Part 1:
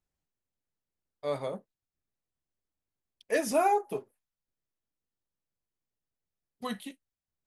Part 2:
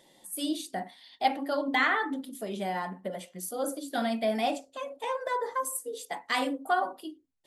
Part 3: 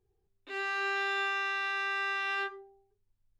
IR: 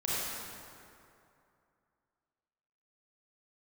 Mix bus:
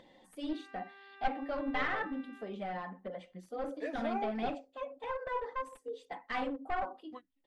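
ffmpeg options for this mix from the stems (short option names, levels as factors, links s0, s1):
-filter_complex "[0:a]adelay=500,volume=0.266[s0];[1:a]aecho=1:1:3.9:0.35,aeval=exprs='clip(val(0),-1,0.0398)':c=same,flanger=delay=0.2:depth=2.4:regen=67:speed=1.8:shape=sinusoidal,volume=0.794,asplit=2[s1][s2];[2:a]acompressor=threshold=0.0112:ratio=6,volume=0.188[s3];[s2]apad=whole_len=351363[s4];[s0][s4]sidechaingate=range=0.0224:threshold=0.00224:ratio=16:detection=peak[s5];[s5][s1][s3]amix=inputs=3:normalize=0,lowpass=2600,acompressor=mode=upward:threshold=0.00224:ratio=2.5"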